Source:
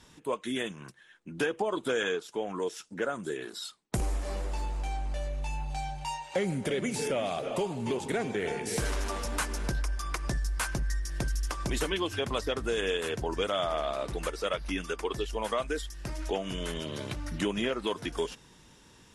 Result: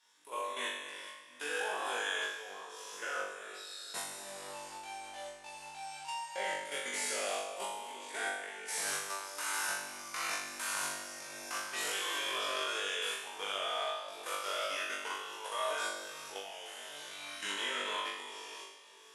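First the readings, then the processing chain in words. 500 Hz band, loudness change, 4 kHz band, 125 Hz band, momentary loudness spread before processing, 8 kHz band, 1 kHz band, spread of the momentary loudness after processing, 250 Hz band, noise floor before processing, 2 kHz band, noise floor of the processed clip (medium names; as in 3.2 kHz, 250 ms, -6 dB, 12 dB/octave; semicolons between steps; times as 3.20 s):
-10.5 dB, -4.5 dB, 0.0 dB, -32.0 dB, 6 LU, +1.5 dB, -2.0 dB, 11 LU, -19.5 dB, -57 dBFS, 0.0 dB, -54 dBFS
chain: spectral sustain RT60 2.17 s; high-pass 830 Hz 12 dB/octave; treble shelf 8 kHz +2.5 dB; level held to a coarse grid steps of 11 dB; flutter echo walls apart 3.5 m, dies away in 0.72 s; trim -7.5 dB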